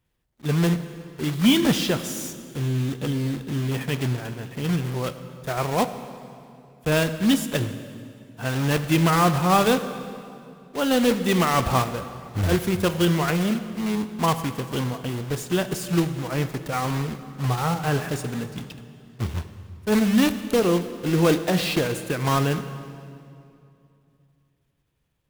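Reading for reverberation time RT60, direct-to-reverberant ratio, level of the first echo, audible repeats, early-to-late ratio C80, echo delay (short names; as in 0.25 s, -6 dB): 2.6 s, 10.0 dB, none, none, 12.0 dB, none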